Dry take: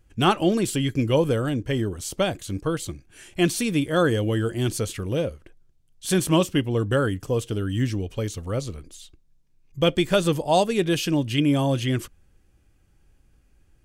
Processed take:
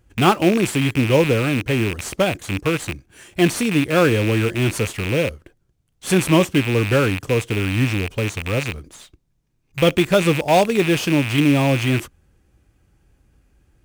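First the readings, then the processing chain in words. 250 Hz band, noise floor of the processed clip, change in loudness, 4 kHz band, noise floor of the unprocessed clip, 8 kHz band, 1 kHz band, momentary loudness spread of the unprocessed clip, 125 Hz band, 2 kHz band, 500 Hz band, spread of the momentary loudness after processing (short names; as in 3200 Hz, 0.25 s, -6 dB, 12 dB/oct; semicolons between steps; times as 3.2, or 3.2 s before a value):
+4.5 dB, -66 dBFS, +5.0 dB, +3.5 dB, -61 dBFS, +3.0 dB, +4.5 dB, 9 LU, +5.0 dB, +9.0 dB, +4.5 dB, 8 LU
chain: rattling part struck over -34 dBFS, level -17 dBFS; HPF 40 Hz; in parallel at -7 dB: sample-rate reducer 6000 Hz, jitter 20%; on the sum: gain +1.5 dB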